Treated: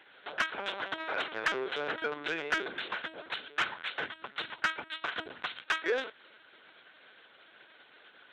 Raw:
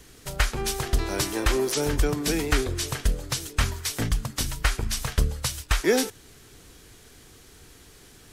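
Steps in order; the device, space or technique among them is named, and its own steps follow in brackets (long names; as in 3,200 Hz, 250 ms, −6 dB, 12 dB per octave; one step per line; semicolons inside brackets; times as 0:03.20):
talking toy (linear-prediction vocoder at 8 kHz pitch kept; high-pass filter 630 Hz 12 dB per octave; parametric band 1,500 Hz +8 dB 0.22 octaves; soft clipping −19.5 dBFS, distortion −14 dB)
level −1 dB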